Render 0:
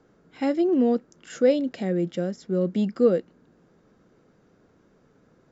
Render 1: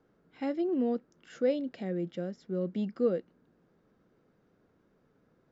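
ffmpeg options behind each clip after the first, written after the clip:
-af "lowpass=4900,volume=0.376"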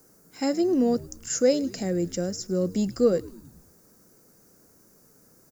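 -filter_complex "[0:a]aexciter=amount=14.4:drive=8.1:freq=5300,asplit=6[s0][s1][s2][s3][s4][s5];[s1]adelay=105,afreqshift=-83,volume=0.0891[s6];[s2]adelay=210,afreqshift=-166,volume=0.055[s7];[s3]adelay=315,afreqshift=-249,volume=0.0343[s8];[s4]adelay=420,afreqshift=-332,volume=0.0211[s9];[s5]adelay=525,afreqshift=-415,volume=0.0132[s10];[s0][s6][s7][s8][s9][s10]amix=inputs=6:normalize=0,volume=2.24"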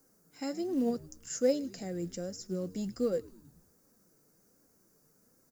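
-af "flanger=delay=3.6:depth=3.3:regen=63:speed=1.3:shape=sinusoidal,acrusher=bits=8:mode=log:mix=0:aa=0.000001,volume=0.531"

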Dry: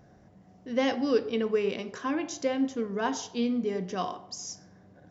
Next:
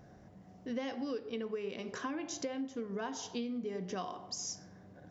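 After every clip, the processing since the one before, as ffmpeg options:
-af "acompressor=threshold=0.0178:ratio=10"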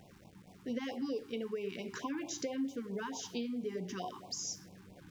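-af "aeval=exprs='val(0)*gte(abs(val(0)),0.0015)':c=same,flanger=delay=5.1:depth=3.2:regen=85:speed=0.62:shape=triangular,afftfilt=real='re*(1-between(b*sr/1024,540*pow(1600/540,0.5+0.5*sin(2*PI*4.5*pts/sr))/1.41,540*pow(1600/540,0.5+0.5*sin(2*PI*4.5*pts/sr))*1.41))':imag='im*(1-between(b*sr/1024,540*pow(1600/540,0.5+0.5*sin(2*PI*4.5*pts/sr))/1.41,540*pow(1600/540,0.5+0.5*sin(2*PI*4.5*pts/sr))*1.41))':win_size=1024:overlap=0.75,volume=1.78"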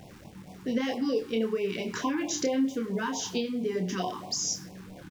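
-filter_complex "[0:a]asplit=2[s0][s1];[s1]adelay=27,volume=0.562[s2];[s0][s2]amix=inputs=2:normalize=0,volume=2.66"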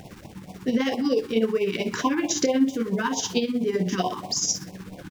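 -af "tremolo=f=16:d=0.58,volume=2.51"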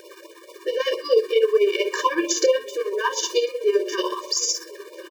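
-af "aecho=1:1:1048:0.075,afftfilt=real='re*eq(mod(floor(b*sr/1024/310),2),1)':imag='im*eq(mod(floor(b*sr/1024/310),2),1)':win_size=1024:overlap=0.75,volume=2.11"

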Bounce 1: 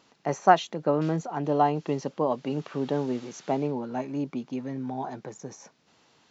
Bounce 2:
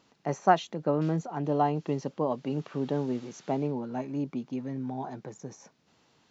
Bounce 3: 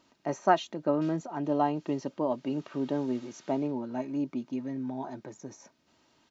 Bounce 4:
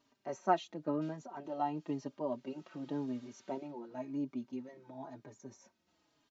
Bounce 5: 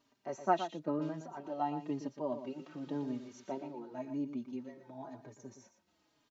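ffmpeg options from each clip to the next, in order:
-af "lowshelf=f=280:g=6,volume=0.596"
-af "aecho=1:1:3.2:0.46,volume=0.841"
-filter_complex "[0:a]asplit=2[s0][s1];[s1]adelay=4.5,afreqshift=-0.95[s2];[s0][s2]amix=inputs=2:normalize=1,volume=0.531"
-af "aecho=1:1:118:0.316"

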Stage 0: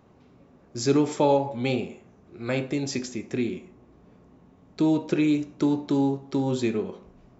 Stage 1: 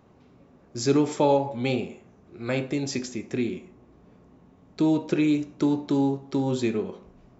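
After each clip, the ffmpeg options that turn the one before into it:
-af anull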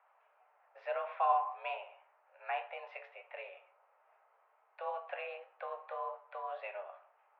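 -af "flanger=delay=9.9:depth=6.4:regen=64:speed=1.8:shape=triangular,highpass=f=530:t=q:w=0.5412,highpass=f=530:t=q:w=1.307,lowpass=f=2400:t=q:w=0.5176,lowpass=f=2400:t=q:w=0.7071,lowpass=f=2400:t=q:w=1.932,afreqshift=190,volume=0.841"

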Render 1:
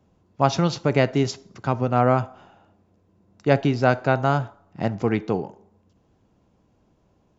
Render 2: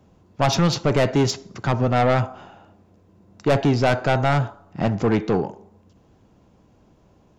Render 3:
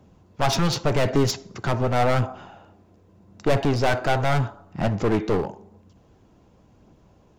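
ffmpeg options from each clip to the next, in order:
-af "asoftclip=type=tanh:threshold=0.106,volume=2.24"
-af "aphaser=in_gain=1:out_gain=1:delay=3.2:decay=0.21:speed=0.87:type=triangular,aeval=exprs='clip(val(0),-1,0.0708)':c=same"

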